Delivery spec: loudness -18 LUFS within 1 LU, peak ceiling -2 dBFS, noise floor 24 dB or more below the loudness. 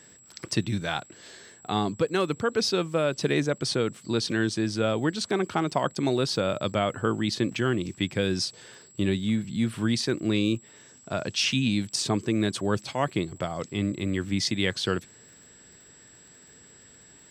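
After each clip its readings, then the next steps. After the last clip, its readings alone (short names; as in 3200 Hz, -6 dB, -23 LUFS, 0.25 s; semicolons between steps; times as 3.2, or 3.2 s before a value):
ticks 43/s; steady tone 7700 Hz; tone level -52 dBFS; loudness -27.5 LUFS; peak -10.5 dBFS; loudness target -18.0 LUFS
-> de-click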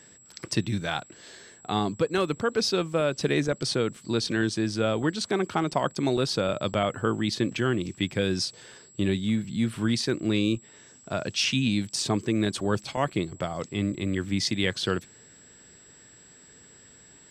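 ticks 0/s; steady tone 7700 Hz; tone level -52 dBFS
-> notch 7700 Hz, Q 30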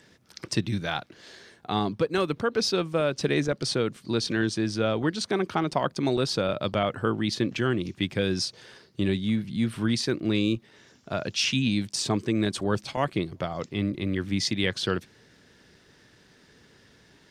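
steady tone none; loudness -27.5 LUFS; peak -10.5 dBFS; loudness target -18.0 LUFS
-> gain +9.5 dB; limiter -2 dBFS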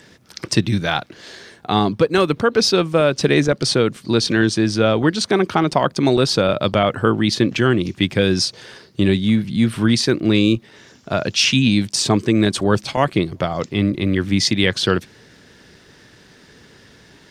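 loudness -18.0 LUFS; peak -2.0 dBFS; noise floor -49 dBFS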